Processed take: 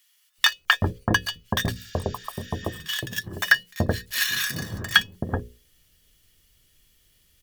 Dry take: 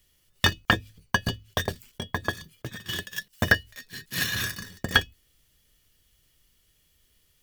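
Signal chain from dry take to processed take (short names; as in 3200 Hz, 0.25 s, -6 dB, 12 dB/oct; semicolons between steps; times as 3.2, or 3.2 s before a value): spectral repair 1.78–2.76, 1300–7600 Hz both; notches 60/120/180/240/300/360/420/480/540 Hz; bands offset in time highs, lows 0.38 s, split 920 Hz; gain +4 dB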